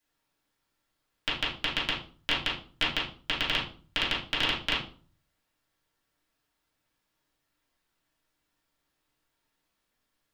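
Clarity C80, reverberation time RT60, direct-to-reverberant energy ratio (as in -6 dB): 11.5 dB, 0.40 s, -9.0 dB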